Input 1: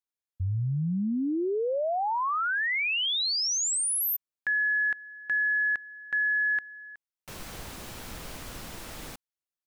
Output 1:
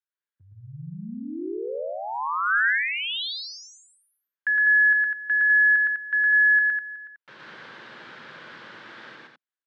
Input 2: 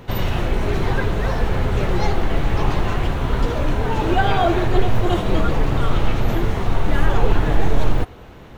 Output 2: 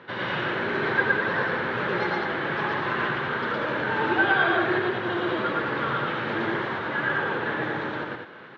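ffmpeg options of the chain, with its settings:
ffmpeg -i in.wav -af "alimiter=limit=-8dB:level=0:latency=1:release=224,highpass=frequency=180:width=0.5412,highpass=frequency=180:width=1.3066,equalizer=frequency=190:width_type=q:width=4:gain=-8,equalizer=frequency=270:width_type=q:width=4:gain=-8,equalizer=frequency=430:width_type=q:width=4:gain=-4,equalizer=frequency=710:width_type=q:width=4:gain=-9,equalizer=frequency=1600:width_type=q:width=4:gain=9,equalizer=frequency=2600:width_type=q:width=4:gain=-4,lowpass=frequency=3700:width=0.5412,lowpass=frequency=3700:width=1.3066,aecho=1:1:113.7|201.2:1|0.562,volume=-2.5dB" out.wav

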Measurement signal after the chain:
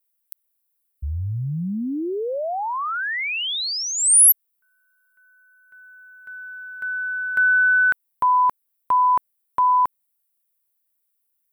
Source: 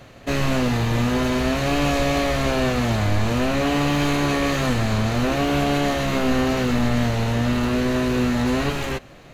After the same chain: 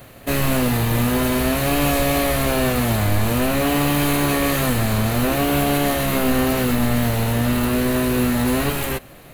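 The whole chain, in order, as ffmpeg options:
ffmpeg -i in.wav -af "aexciter=amount=8.6:drive=2.6:freq=8800,alimiter=level_in=8.5dB:limit=-1dB:release=50:level=0:latency=1,volume=-7dB" out.wav

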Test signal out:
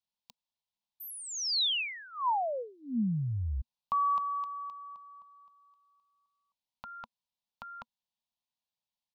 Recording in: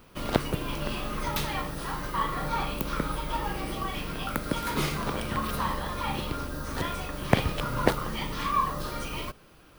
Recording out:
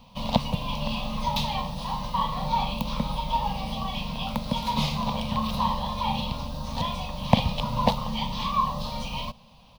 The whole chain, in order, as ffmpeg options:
ffmpeg -i in.wav -af "firequalizer=gain_entry='entry(130,0);entry(230,5);entry(340,-30);entry(500,-3);entry(980,6);entry(1400,-20);entry(2600,0);entry(3800,5);entry(8200,-11)':delay=0.05:min_phase=1,volume=2.5dB" out.wav

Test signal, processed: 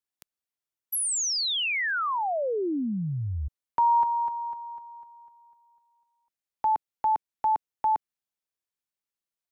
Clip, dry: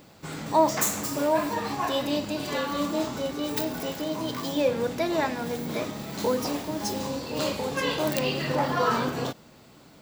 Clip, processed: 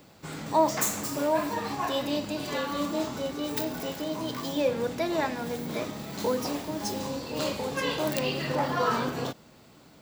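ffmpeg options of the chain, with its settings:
ffmpeg -i in.wav -filter_complex "[0:a]acrossover=split=290|3000[link_01][link_02][link_03];[link_01]acompressor=threshold=-30dB:ratio=1.5[link_04];[link_04][link_02][link_03]amix=inputs=3:normalize=0,volume=-2dB" out.wav

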